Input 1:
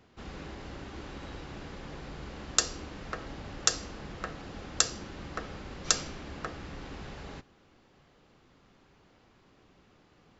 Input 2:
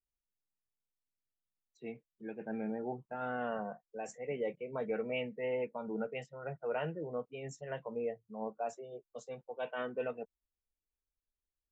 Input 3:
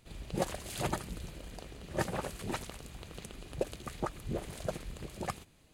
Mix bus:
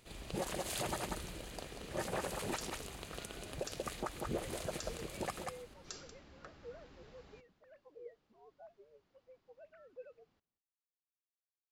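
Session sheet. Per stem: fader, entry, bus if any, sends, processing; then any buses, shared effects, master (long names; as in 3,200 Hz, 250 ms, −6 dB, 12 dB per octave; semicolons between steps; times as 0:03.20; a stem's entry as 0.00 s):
−16.5 dB, 0.00 s, no send, echo send −20 dB, parametric band 4,700 Hz +2.5 dB
−17.5 dB, 0.00 s, no send, no echo send, three sine waves on the formant tracks
+1.5 dB, 0.00 s, no send, echo send −8 dB, bass and treble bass −7 dB, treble +1 dB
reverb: not used
echo: single-tap delay 187 ms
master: brickwall limiter −27 dBFS, peak gain reduction 11 dB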